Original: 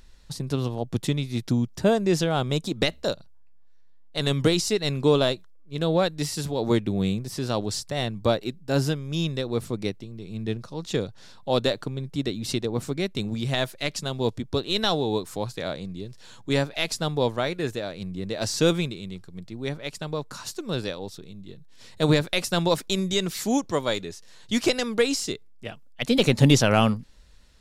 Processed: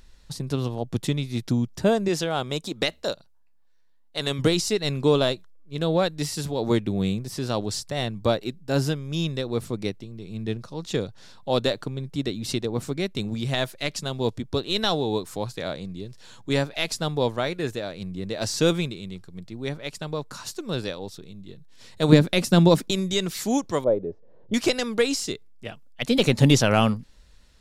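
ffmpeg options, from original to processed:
ffmpeg -i in.wav -filter_complex "[0:a]asettb=1/sr,asplit=3[link_01][link_02][link_03];[link_01]atrim=end=2.084[link_04];[link_02]atrim=start=2.08:end=4.39,asetpts=PTS-STARTPTS,afade=type=in:duration=0.004:curve=qsin,afade=type=out:start_time=2.306:duration=0.004:curve=qsin,lowshelf=frequency=220:gain=-9.5[link_05];[link_03]atrim=start=4.386[link_06];[link_04][link_05]acrossfade=duration=0.004:curve1=hsin:curve2=qsin[link_07];[link_07][link_06]acrossfade=duration=0.004:curve1=qsin:curve2=hsin,asettb=1/sr,asplit=3[link_08][link_09][link_10];[link_08]atrim=end=22.124[link_11];[link_09]atrim=start=22.12:end=22.91,asetpts=PTS-STARTPTS,afade=type=in:duration=0.004:curve=qsin,afade=type=out:start_time=0.786:duration=0.004:curve=qsin,equalizer=frequency=220:width=0.78:gain=12[link_12];[link_10]atrim=start=22.906[link_13];[link_11][link_12]acrossfade=duration=0.004:curve1=hsin:curve2=qsin[link_14];[link_14][link_13]acrossfade=duration=0.004:curve1=qsin:curve2=hsin,asettb=1/sr,asplit=3[link_15][link_16][link_17];[link_15]atrim=end=23.844[link_18];[link_16]atrim=start=23.84:end=24.54,asetpts=PTS-STARTPTS,afade=type=in:duration=0.004:curve=qsin,afade=type=out:start_time=0.696:duration=0.004:curve=qsin,lowpass=frequency=530:width_type=q:width=2.6[link_19];[link_17]atrim=start=24.536[link_20];[link_18][link_19]acrossfade=duration=0.004:curve1=hsin:curve2=qsin[link_21];[link_21][link_20]acrossfade=duration=0.004:curve1=qsin:curve2=hsin" out.wav

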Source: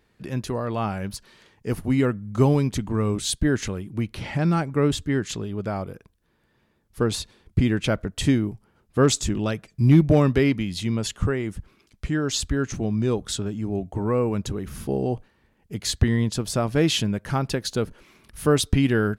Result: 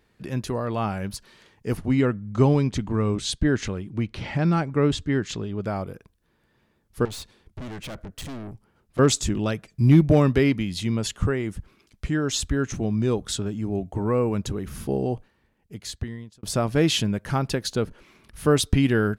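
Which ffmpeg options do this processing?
ffmpeg -i in.wav -filter_complex "[0:a]asettb=1/sr,asplit=3[link_01][link_02][link_03];[link_01]atrim=end=1.774[link_04];[link_02]atrim=start=1.77:end=5.62,asetpts=PTS-STARTPTS,afade=type=in:duration=0.004:curve=qsin,afade=type=out:start_time=3.846:duration=0.004:curve=qsin,lowpass=6500[link_05];[link_03]atrim=start=5.616[link_06];[link_04][link_05]acrossfade=duration=0.004:curve1=hsin:curve2=qsin[link_07];[link_07][link_06]acrossfade=duration=0.004:curve1=qsin:curve2=hsin,asettb=1/sr,asplit=3[link_08][link_09][link_10];[link_08]atrim=end=7.054[link_11];[link_09]atrim=start=7.05:end=8.99,asetpts=PTS-STARTPTS,afade=type=in:duration=0.004:curve=qsin,afade=type=out:start_time=1.936:duration=0.004:curve=qsin,aeval=exprs='(tanh(50.1*val(0)+0.45)-tanh(0.45))/50.1':channel_layout=same[link_12];[link_10]atrim=start=8.986[link_13];[link_11][link_12]acrossfade=duration=0.004:curve1=hsin:curve2=qsin[link_14];[link_14][link_13]acrossfade=duration=0.004:curve1=qsin:curve2=hsin,asettb=1/sr,asplit=3[link_15][link_16][link_17];[link_15]atrim=end=12.164[link_18];[link_16]atrim=start=12.16:end=12.76,asetpts=PTS-STARTPTS,afade=type=in:duration=0.004:curve=qsin,afade=type=out:start_time=0.596:duration=0.004:curve=qsin,bandreject=frequency=4600:width=12[link_19];[link_17]atrim=start=12.756[link_20];[link_18][link_19]acrossfade=duration=0.004:curve1=hsin:curve2=qsin[link_21];[link_21][link_20]acrossfade=duration=0.004:curve1=qsin:curve2=hsin,asettb=1/sr,asplit=3[link_22][link_23][link_24];[link_22]atrim=end=17.724[link_25];[link_23]atrim=start=17.72:end=18.47,asetpts=PTS-STARTPTS,afade=type=in:duration=0.004:curve=qsin,afade=type=out:start_time=0.746:duration=0.004:curve=qsin,highshelf=frequency=7300:gain=-6[link_26];[link_24]atrim=start=18.466[link_27];[link_25][link_26]acrossfade=duration=0.004:curve1=hsin:curve2=qsin[link_28];[link_28][link_27]acrossfade=duration=0.004:curve1=qsin:curve2=hsin,asplit=2[link_29][link_30];[link_29]atrim=end=16.43,asetpts=PTS-STARTPTS,afade=type=out:start_time=14.94:duration=1.49[link_31];[link_30]atrim=start=16.43,asetpts=PTS-STARTPTS,afade=type=in:duration=0.004:curve=hsin[link_32];[link_31][link_32]concat=n=2:v=0:a=1" out.wav

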